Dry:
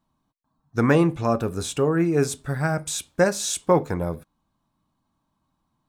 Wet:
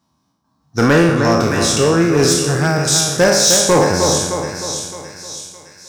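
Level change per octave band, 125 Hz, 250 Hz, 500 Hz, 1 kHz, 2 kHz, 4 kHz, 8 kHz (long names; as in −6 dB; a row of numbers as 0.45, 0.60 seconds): +7.5, +7.5, +8.5, +9.0, +11.0, +17.5, +16.0 decibels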